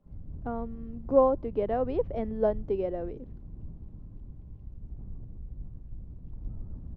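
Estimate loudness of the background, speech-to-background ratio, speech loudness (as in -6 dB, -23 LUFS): -45.0 LUFS, 16.0 dB, -29.0 LUFS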